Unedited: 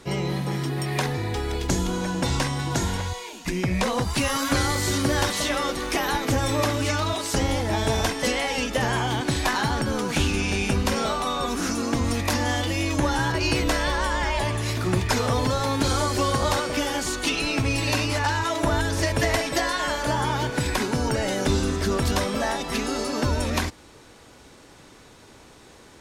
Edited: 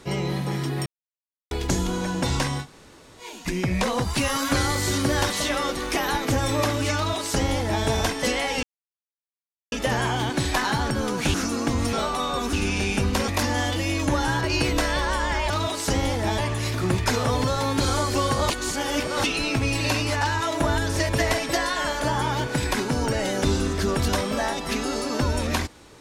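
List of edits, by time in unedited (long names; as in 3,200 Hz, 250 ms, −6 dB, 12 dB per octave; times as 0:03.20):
0:00.86–0:01.51: silence
0:02.62–0:03.22: fill with room tone, crossfade 0.10 s
0:06.96–0:07.84: duplicate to 0:14.41
0:08.63: splice in silence 1.09 s
0:10.25–0:11.00: swap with 0:11.60–0:12.19
0:16.53–0:17.27: reverse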